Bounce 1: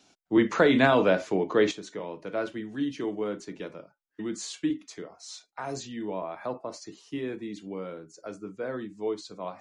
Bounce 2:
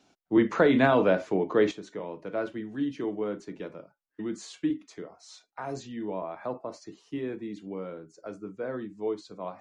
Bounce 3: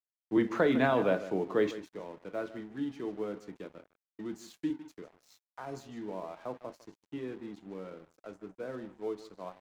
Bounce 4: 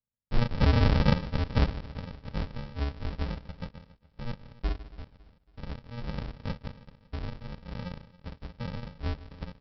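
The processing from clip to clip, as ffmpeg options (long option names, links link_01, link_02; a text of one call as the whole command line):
ffmpeg -i in.wav -af "highshelf=frequency=2700:gain=-9" out.wav
ffmpeg -i in.wav -af "aecho=1:1:153:0.2,aeval=exprs='sgn(val(0))*max(abs(val(0))-0.00335,0)':channel_layout=same,volume=-5dB" out.wav
ffmpeg -i in.wav -af "aresample=11025,acrusher=samples=31:mix=1:aa=0.000001,aresample=44100,aecho=1:1:277|554|831:0.1|0.044|0.0194,volume=4.5dB" out.wav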